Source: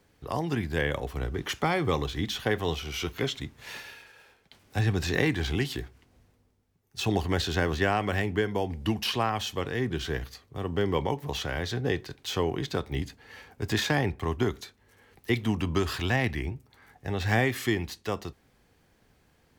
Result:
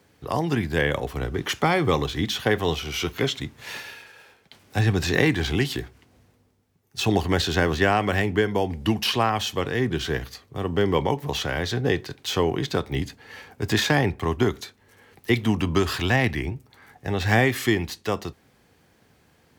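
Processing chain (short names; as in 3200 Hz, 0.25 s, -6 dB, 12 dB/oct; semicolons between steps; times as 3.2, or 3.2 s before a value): HPF 77 Hz; gain +5.5 dB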